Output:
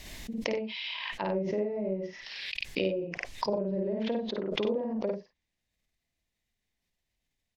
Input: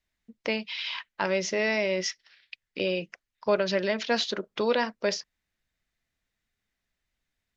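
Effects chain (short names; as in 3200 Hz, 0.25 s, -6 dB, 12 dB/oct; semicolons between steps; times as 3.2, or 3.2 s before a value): treble ducked by the level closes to 400 Hz, closed at -22.5 dBFS; bell 1400 Hz -11 dB 0.59 oct; loudspeakers at several distances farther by 18 m -1 dB, 32 m -8 dB; backwards sustainer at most 29 dB/s; gain -3.5 dB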